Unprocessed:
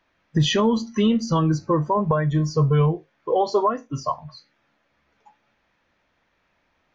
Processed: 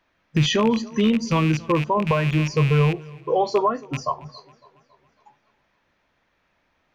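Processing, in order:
loose part that buzzes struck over −26 dBFS, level −19 dBFS
feedback echo with a swinging delay time 277 ms, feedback 51%, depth 56 cents, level −23 dB

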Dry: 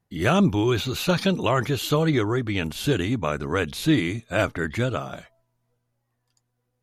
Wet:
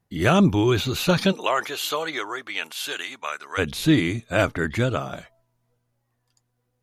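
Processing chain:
0:01.31–0:03.57: high-pass filter 550 Hz → 1,300 Hz 12 dB per octave
level +2 dB

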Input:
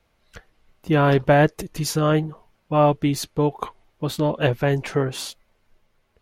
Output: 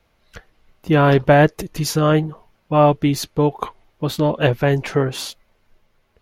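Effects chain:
parametric band 8,400 Hz −4.5 dB 0.4 octaves
level +3.5 dB

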